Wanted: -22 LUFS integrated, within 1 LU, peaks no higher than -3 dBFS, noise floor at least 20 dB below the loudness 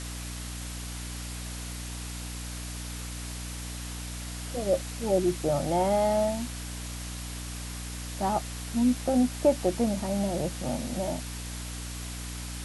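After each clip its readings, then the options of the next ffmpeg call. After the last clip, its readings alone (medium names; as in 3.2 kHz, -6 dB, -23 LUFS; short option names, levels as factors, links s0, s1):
hum 60 Hz; highest harmonic 300 Hz; hum level -36 dBFS; noise floor -37 dBFS; noise floor target -51 dBFS; loudness -30.5 LUFS; peak level -11.0 dBFS; loudness target -22.0 LUFS
-> -af "bandreject=f=60:t=h:w=6,bandreject=f=120:t=h:w=6,bandreject=f=180:t=h:w=6,bandreject=f=240:t=h:w=6,bandreject=f=300:t=h:w=6"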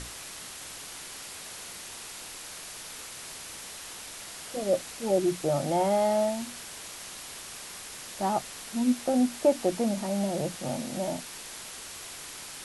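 hum not found; noise floor -43 dBFS; noise floor target -52 dBFS
-> -af "afftdn=nr=9:nf=-43"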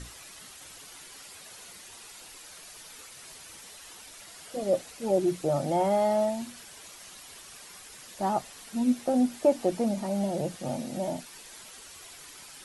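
noise floor -48 dBFS; noise floor target -49 dBFS
-> -af "afftdn=nr=6:nf=-48"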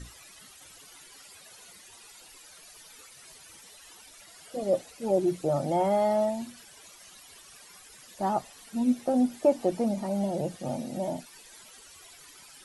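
noise floor -52 dBFS; loudness -28.5 LUFS; peak level -11.5 dBFS; loudness target -22.0 LUFS
-> -af "volume=2.11"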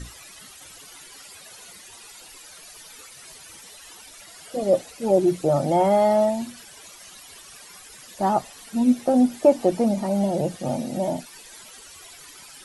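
loudness -22.0 LUFS; peak level -5.0 dBFS; noise floor -46 dBFS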